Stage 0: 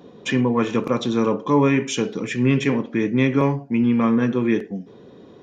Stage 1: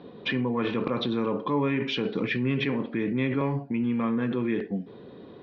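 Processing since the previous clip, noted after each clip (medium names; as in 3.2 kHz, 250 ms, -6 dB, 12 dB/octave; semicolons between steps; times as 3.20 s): elliptic low-pass 4.4 kHz, stop band 50 dB; in parallel at -1.5 dB: compressor with a negative ratio -26 dBFS, ratio -0.5; on the sum: trim -8.5 dB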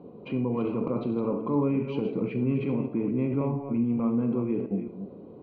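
chunks repeated in reverse 222 ms, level -8.5 dB; boxcar filter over 25 samples; on a send at -10 dB: reverberation RT60 0.40 s, pre-delay 5 ms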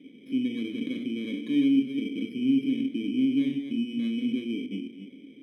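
bit-reversed sample order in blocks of 16 samples; vowel filter i; hum notches 60/120/180/240 Hz; trim +7 dB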